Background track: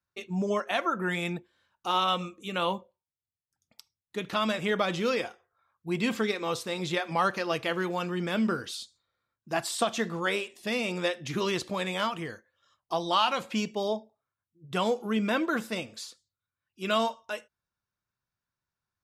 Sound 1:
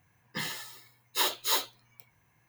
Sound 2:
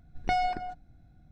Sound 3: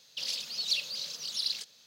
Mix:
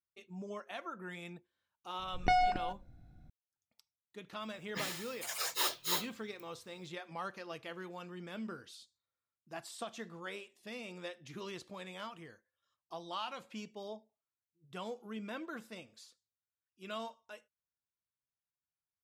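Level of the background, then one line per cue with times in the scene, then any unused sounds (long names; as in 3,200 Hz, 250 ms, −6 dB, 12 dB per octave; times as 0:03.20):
background track −15.5 dB
0:01.99: mix in 2 −1 dB
0:04.40: mix in 1 −6.5 dB + delay with pitch and tempo change per echo 108 ms, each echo +5 semitones, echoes 3
not used: 3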